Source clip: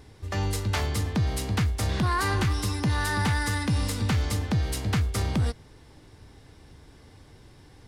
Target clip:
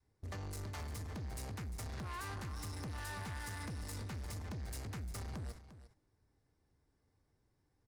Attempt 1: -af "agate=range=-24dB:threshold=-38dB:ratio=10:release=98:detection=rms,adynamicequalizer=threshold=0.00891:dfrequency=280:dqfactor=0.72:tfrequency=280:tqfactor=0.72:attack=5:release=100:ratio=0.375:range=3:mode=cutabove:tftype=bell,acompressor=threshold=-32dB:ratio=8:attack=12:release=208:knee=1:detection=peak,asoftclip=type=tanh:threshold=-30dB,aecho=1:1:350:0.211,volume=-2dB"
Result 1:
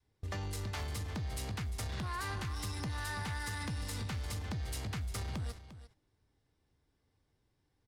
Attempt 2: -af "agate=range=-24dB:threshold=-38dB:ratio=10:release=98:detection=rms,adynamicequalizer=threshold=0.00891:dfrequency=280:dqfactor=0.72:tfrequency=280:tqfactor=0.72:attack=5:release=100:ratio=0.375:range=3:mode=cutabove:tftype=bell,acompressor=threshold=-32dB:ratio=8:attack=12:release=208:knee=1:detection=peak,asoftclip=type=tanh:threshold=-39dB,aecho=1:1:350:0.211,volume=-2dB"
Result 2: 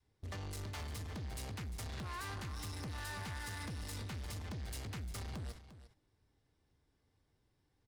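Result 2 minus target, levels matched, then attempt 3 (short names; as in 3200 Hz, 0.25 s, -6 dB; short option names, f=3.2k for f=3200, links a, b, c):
4000 Hz band +3.0 dB
-af "agate=range=-24dB:threshold=-38dB:ratio=10:release=98:detection=rms,adynamicequalizer=threshold=0.00891:dfrequency=280:dqfactor=0.72:tfrequency=280:tqfactor=0.72:attack=5:release=100:ratio=0.375:range=3:mode=cutabove:tftype=bell,acompressor=threshold=-32dB:ratio=8:attack=12:release=208:knee=1:detection=peak,equalizer=f=3.2k:t=o:w=0.77:g=-9,asoftclip=type=tanh:threshold=-39dB,aecho=1:1:350:0.211,volume=-2dB"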